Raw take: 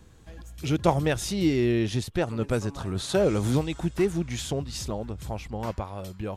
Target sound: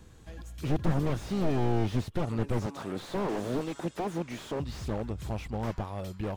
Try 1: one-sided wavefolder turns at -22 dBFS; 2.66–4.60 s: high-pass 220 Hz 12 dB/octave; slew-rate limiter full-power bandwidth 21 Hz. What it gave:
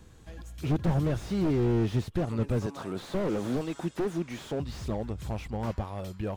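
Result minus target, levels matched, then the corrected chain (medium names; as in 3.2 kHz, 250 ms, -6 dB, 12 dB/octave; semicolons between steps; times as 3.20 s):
one-sided wavefolder: distortion -10 dB
one-sided wavefolder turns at -30 dBFS; 2.66–4.60 s: high-pass 220 Hz 12 dB/octave; slew-rate limiter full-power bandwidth 21 Hz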